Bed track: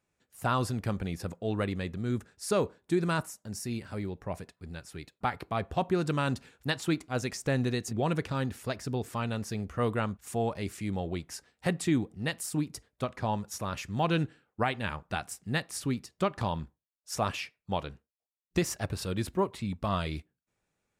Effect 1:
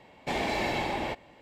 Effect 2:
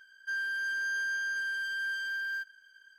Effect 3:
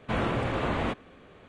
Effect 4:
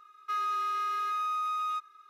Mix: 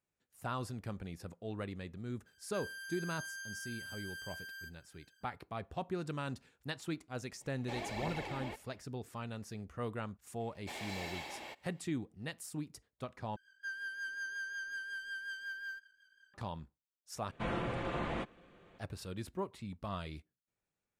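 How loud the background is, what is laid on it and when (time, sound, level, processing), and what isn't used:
bed track −10.5 dB
0:02.26: mix in 2 −1 dB + first difference
0:07.41: mix in 1 −14 dB + phase shifter 1.5 Hz, delay 3.9 ms, feedback 55%
0:10.40: mix in 1 −15 dB + spectral tilt +3 dB per octave
0:13.36: overwrite with 2 −6 dB + rotating-speaker cabinet horn 5.5 Hz
0:17.31: overwrite with 3 −9 dB + comb filter 5.8 ms, depth 36%
not used: 4

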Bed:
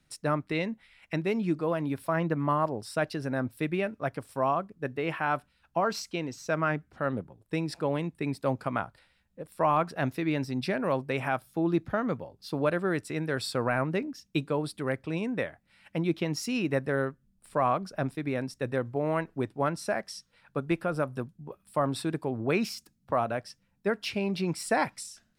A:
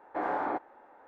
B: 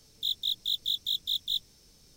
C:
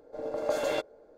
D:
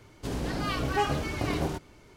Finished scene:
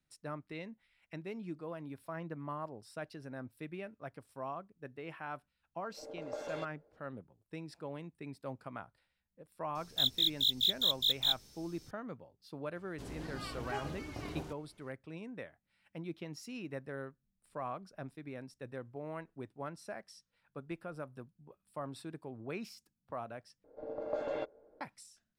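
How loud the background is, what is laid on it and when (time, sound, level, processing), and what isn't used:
bed −14.5 dB
0:05.84: mix in C −12.5 dB + high-frequency loss of the air 54 metres
0:09.75: mix in B
0:12.75: mix in D −13.5 dB
0:23.64: overwrite with C −5.5 dB + head-to-tape spacing loss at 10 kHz 31 dB
not used: A

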